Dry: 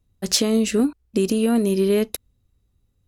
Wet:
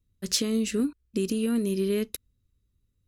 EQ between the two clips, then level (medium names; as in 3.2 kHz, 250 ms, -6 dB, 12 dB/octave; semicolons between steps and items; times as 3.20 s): peaking EQ 750 Hz -14 dB 0.69 oct; -6.0 dB